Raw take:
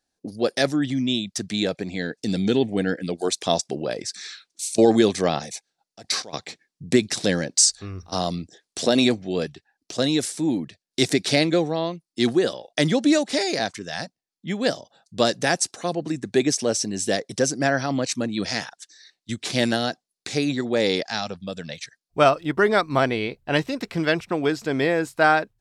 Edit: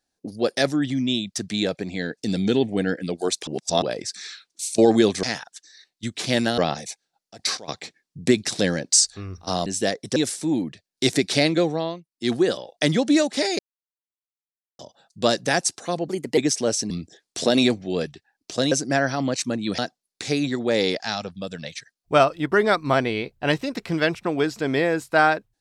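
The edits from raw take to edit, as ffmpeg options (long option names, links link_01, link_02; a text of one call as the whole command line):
ffmpeg -i in.wav -filter_complex "[0:a]asplit=15[link_01][link_02][link_03][link_04][link_05][link_06][link_07][link_08][link_09][link_10][link_11][link_12][link_13][link_14][link_15];[link_01]atrim=end=3.472[link_16];[link_02]atrim=start=3.468:end=3.822,asetpts=PTS-STARTPTS,areverse[link_17];[link_03]atrim=start=3.818:end=5.232[link_18];[link_04]atrim=start=18.488:end=19.842[link_19];[link_05]atrim=start=5.228:end=8.312[link_20];[link_06]atrim=start=16.918:end=17.422[link_21];[link_07]atrim=start=10.118:end=12.04,asetpts=PTS-STARTPTS,afade=type=out:start_time=1.622:duration=0.3:silence=0.199526[link_22];[link_08]atrim=start=12.04:end=13.55,asetpts=PTS-STARTPTS,afade=type=in:duration=0.3:silence=0.199526,afade=type=out:start_time=1.506:duration=0.004:curve=hsin[link_23];[link_09]atrim=start=13.55:end=14.75,asetpts=PTS-STARTPTS,volume=0[link_24];[link_10]atrim=start=14.75:end=16.044,asetpts=PTS-STARTPTS,afade=type=in:duration=0.004:curve=hsin[link_25];[link_11]atrim=start=16.04:end=16.39,asetpts=PTS-STARTPTS,asetrate=52479,aresample=44100[link_26];[link_12]atrim=start=16.386:end=16.922[link_27];[link_13]atrim=start=8.308:end=10.122[link_28];[link_14]atrim=start=17.418:end=18.492[link_29];[link_15]atrim=start=19.838[link_30];[link_16][link_17]acrossfade=duration=0.004:curve1=hsin:curve2=hsin[link_31];[link_31][link_18]acrossfade=duration=0.004:curve1=hsin:curve2=hsin[link_32];[link_32][link_19]acrossfade=duration=0.004:curve1=hsin:curve2=hsin[link_33];[link_33][link_20]acrossfade=duration=0.004:curve1=hsin:curve2=hsin[link_34];[link_34][link_21]acrossfade=duration=0.004:curve1=hsin:curve2=hsin[link_35];[link_22][link_23][link_24][link_25]concat=n=4:v=0:a=1[link_36];[link_35][link_36]acrossfade=duration=0.004:curve1=hsin:curve2=hsin[link_37];[link_37][link_26]acrossfade=duration=0.004:curve1=hsin:curve2=hsin[link_38];[link_38][link_27]acrossfade=duration=0.004:curve1=hsin:curve2=hsin[link_39];[link_39][link_28]acrossfade=duration=0.004:curve1=hsin:curve2=hsin[link_40];[link_40][link_29]acrossfade=duration=0.004:curve1=hsin:curve2=hsin[link_41];[link_41][link_30]acrossfade=duration=0.004:curve1=hsin:curve2=hsin" out.wav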